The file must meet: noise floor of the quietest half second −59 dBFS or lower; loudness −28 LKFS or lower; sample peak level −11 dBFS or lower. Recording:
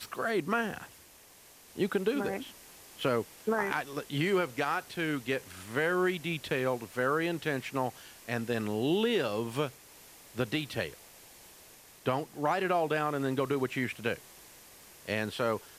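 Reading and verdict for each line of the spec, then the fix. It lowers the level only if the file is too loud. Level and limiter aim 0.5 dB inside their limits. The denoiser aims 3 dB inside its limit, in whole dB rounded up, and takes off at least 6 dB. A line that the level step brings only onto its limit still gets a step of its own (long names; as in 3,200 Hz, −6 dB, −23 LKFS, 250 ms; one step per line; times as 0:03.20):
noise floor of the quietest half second −56 dBFS: out of spec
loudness −32.0 LKFS: in spec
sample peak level −13.5 dBFS: in spec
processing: broadband denoise 6 dB, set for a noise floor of −56 dBFS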